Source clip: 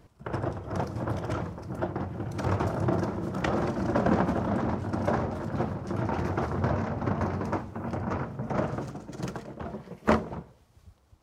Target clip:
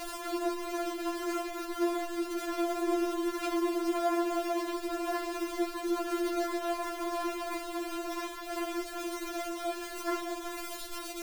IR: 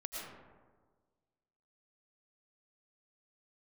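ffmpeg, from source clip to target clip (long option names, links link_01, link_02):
-af "aeval=exprs='val(0)+0.5*0.0841*sgn(val(0))':channel_layout=same,afftfilt=real='re*4*eq(mod(b,16),0)':imag='im*4*eq(mod(b,16),0)':win_size=2048:overlap=0.75,volume=-7dB"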